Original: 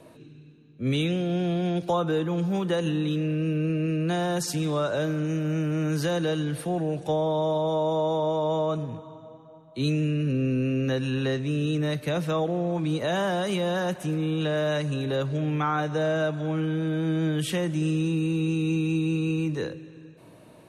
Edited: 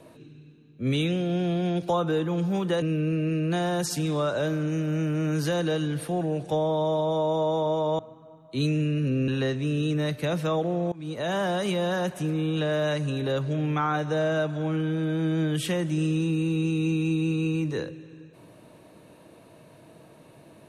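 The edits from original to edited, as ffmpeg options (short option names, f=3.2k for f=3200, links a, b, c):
-filter_complex "[0:a]asplit=5[a][b][c][d][e];[a]atrim=end=2.822[f];[b]atrim=start=3.388:end=8.562[g];[c]atrim=start=9.218:end=10.512[h];[d]atrim=start=11.118:end=12.76,asetpts=PTS-STARTPTS,afade=t=out:st=1.638:d=0.004:c=hsin:silence=0.0749894[i];[e]atrim=start=12.76,asetpts=PTS-STARTPTS,afade=t=in:d=0.64:c=qsin:silence=0.0749894[j];[f][g]acrossfade=d=0.004:c1=hsin:c2=hsin[k];[k][h]acrossfade=d=0.004:c1=hsin:c2=hsin[l];[i][j]concat=n=2:v=0:a=1[m];[l][m]acrossfade=d=0.004:c1=hsin:c2=hsin"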